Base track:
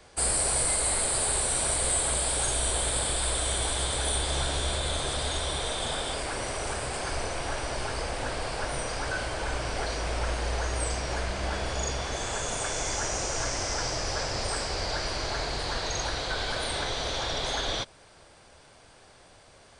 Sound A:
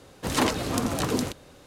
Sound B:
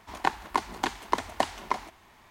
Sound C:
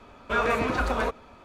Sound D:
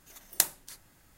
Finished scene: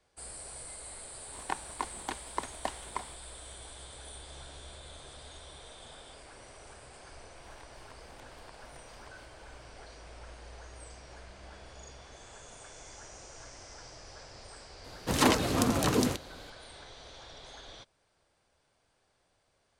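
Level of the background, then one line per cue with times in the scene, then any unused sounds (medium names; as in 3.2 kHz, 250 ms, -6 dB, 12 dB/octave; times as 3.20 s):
base track -19 dB
1.25 s: add B -9 dB
7.36 s: add B -14 dB + compression, threshold -38 dBFS
14.84 s: add A -0.5 dB
not used: C, D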